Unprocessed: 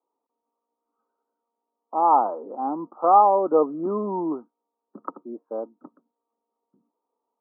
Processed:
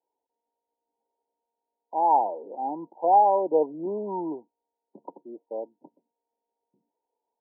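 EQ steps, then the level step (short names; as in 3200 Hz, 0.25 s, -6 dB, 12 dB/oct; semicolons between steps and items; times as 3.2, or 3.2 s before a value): brick-wall FIR low-pass 1000 Hz; bell 240 Hz -8 dB 0.7 oct; -2.0 dB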